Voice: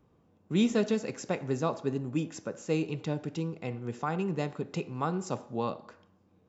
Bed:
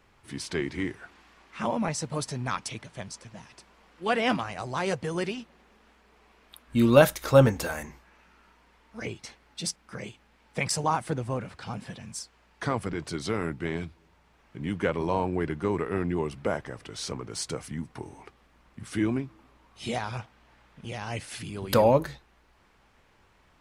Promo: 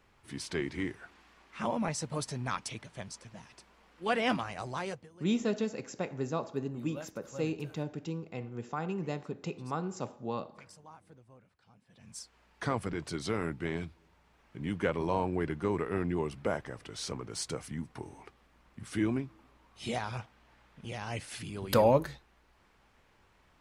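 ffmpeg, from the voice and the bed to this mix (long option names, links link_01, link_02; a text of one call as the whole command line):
ffmpeg -i stem1.wav -i stem2.wav -filter_complex "[0:a]adelay=4700,volume=-4dB[link_01];[1:a]volume=19.5dB,afade=type=out:start_time=4.67:duration=0.42:silence=0.0707946,afade=type=in:start_time=11.89:duration=0.47:silence=0.0668344[link_02];[link_01][link_02]amix=inputs=2:normalize=0" out.wav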